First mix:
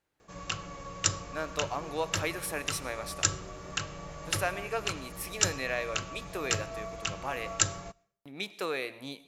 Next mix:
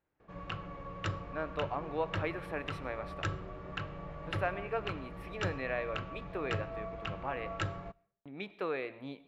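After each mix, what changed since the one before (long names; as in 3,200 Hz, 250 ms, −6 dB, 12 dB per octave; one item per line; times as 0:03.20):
master: add high-frequency loss of the air 490 metres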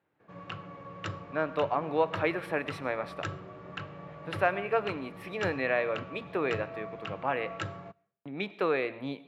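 speech +7.5 dB
master: add high-pass filter 100 Hz 24 dB per octave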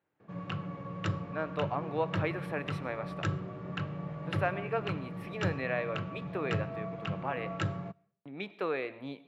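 speech −5.0 dB
background: add parametric band 160 Hz +9.5 dB 1.7 octaves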